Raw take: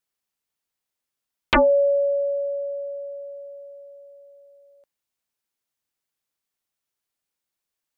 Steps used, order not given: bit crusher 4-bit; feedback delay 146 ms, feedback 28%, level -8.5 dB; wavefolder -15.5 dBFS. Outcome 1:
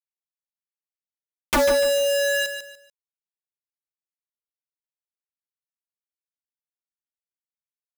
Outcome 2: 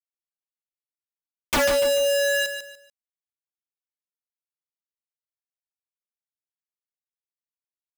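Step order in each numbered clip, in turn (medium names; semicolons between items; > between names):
wavefolder > bit crusher > feedback delay; bit crusher > feedback delay > wavefolder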